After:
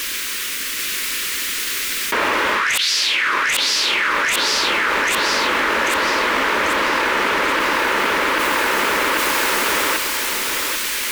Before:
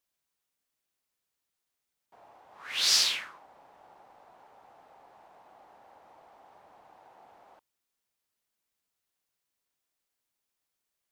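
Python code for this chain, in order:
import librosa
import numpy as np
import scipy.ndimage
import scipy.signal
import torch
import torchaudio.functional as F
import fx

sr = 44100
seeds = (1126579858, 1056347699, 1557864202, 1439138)

p1 = fx.gate_flip(x, sr, shuts_db=-22.0, range_db=-25)
p2 = fx.peak_eq(p1, sr, hz=2000.0, db=10.0, octaves=2.0)
p3 = fx.fixed_phaser(p2, sr, hz=310.0, stages=4)
p4 = fx.fold_sine(p3, sr, drive_db=14, ceiling_db=-15.5)
p5 = p4 + fx.echo_feedback(p4, sr, ms=791, feedback_pct=44, wet_db=-4.0, dry=0)
y = fx.env_flatten(p5, sr, amount_pct=100)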